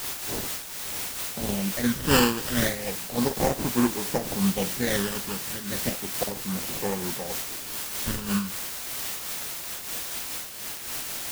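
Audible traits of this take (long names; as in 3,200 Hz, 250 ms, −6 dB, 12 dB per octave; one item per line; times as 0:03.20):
aliases and images of a low sample rate 1,300 Hz, jitter 20%
phaser sweep stages 12, 0.33 Hz, lowest notch 650–4,300 Hz
a quantiser's noise floor 6 bits, dither triangular
amplitude modulation by smooth noise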